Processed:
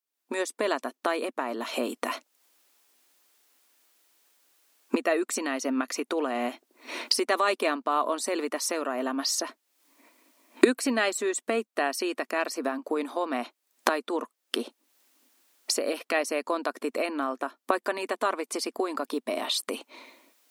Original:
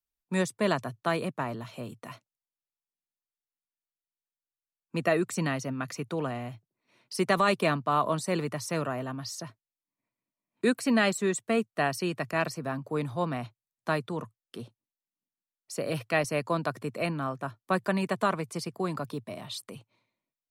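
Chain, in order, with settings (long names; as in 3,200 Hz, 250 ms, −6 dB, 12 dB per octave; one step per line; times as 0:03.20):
camcorder AGC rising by 51 dB per second
linear-phase brick-wall high-pass 230 Hz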